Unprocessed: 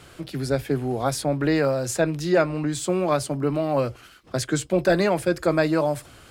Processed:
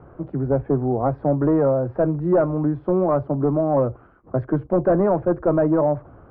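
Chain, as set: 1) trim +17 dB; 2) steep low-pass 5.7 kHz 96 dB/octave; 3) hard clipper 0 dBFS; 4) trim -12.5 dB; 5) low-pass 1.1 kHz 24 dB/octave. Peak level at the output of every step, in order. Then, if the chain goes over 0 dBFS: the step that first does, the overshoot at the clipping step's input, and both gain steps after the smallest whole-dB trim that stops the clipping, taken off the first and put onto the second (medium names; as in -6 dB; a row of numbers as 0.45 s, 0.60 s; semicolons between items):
+6.5 dBFS, +6.5 dBFS, 0.0 dBFS, -12.5 dBFS, -10.5 dBFS; step 1, 6.5 dB; step 1 +10 dB, step 4 -5.5 dB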